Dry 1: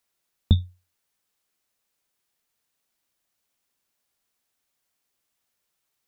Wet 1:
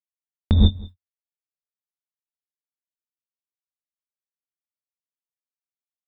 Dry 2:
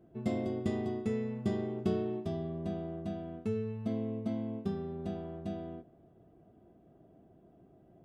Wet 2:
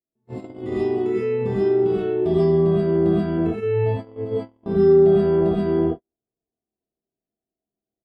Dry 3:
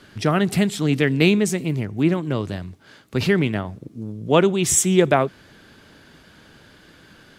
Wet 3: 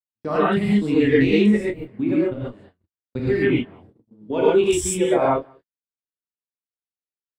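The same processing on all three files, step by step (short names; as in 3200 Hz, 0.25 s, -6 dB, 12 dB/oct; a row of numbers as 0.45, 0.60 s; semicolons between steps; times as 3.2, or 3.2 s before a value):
thirty-one-band EQ 100 Hz -11 dB, 160 Hz -4 dB, 6300 Hz -10 dB, 12500 Hz -10 dB; soft clip -3.5 dBFS; level quantiser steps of 23 dB; echo 0.19 s -22.5 dB; spectral noise reduction 9 dB; high shelf 2600 Hz -10 dB; doubler 25 ms -8.5 dB; non-linear reverb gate 0.16 s rising, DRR -7.5 dB; gate -47 dBFS, range -42 dB; match loudness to -20 LUFS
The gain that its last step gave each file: +8.0, +21.5, +0.5 dB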